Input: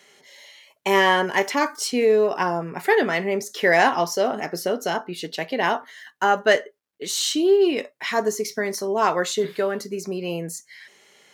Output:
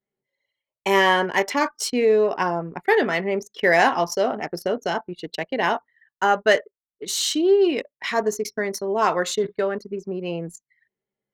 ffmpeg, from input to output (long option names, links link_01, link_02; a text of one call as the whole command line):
ffmpeg -i in.wav -af "anlmdn=39.8" out.wav